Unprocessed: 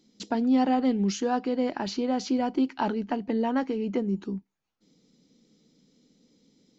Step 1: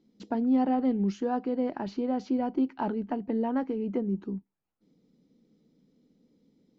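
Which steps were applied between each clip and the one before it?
LPF 1000 Hz 6 dB/oct; gain -1.5 dB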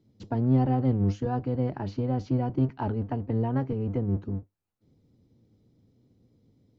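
octaver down 1 oct, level +3 dB; gain -1.5 dB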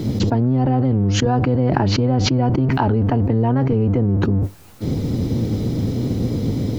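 fast leveller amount 100%; gain +2.5 dB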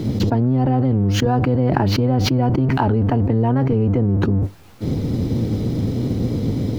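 median filter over 5 samples

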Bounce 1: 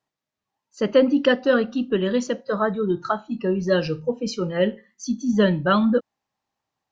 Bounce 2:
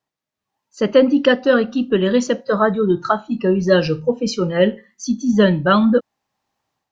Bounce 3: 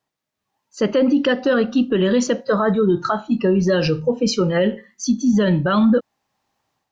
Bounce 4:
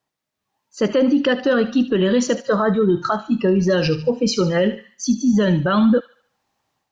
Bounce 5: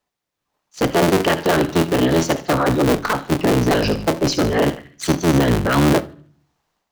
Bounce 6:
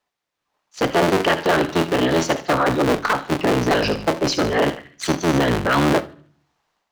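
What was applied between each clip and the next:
AGC gain up to 8 dB
limiter -12 dBFS, peak gain reduction 10 dB; gain +3 dB
thin delay 74 ms, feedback 41%, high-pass 1700 Hz, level -10.5 dB
cycle switcher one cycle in 3, inverted; shoebox room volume 340 m³, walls furnished, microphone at 0.35 m
overdrive pedal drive 6 dB, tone 4400 Hz, clips at -6 dBFS

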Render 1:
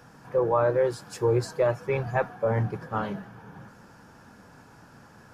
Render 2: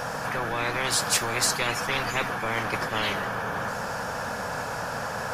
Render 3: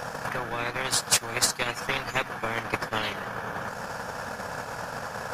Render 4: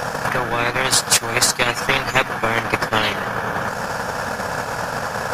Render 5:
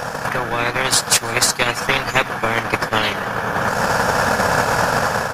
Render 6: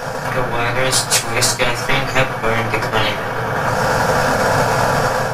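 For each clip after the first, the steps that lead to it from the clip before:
resonant low shelf 430 Hz -7 dB, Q 3; spectral compressor 10:1
transient shaper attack +11 dB, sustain -11 dB; gain -4 dB
maximiser +11.5 dB; gain -1 dB
AGC gain up to 10.5 dB; echo 0.326 s -24 dB; gain -1 dB
shoebox room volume 130 m³, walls furnished, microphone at 1.7 m; gain -2.5 dB

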